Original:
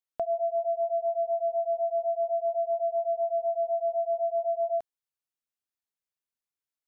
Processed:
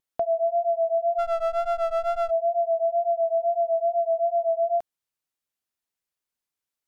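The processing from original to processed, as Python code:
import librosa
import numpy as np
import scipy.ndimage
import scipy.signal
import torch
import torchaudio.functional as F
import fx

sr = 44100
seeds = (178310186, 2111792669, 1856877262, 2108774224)

y = fx.wow_flutter(x, sr, seeds[0], rate_hz=2.1, depth_cents=33.0)
y = fx.running_max(y, sr, window=17, at=(1.18, 2.29), fade=0.02)
y = y * librosa.db_to_amplitude(4.5)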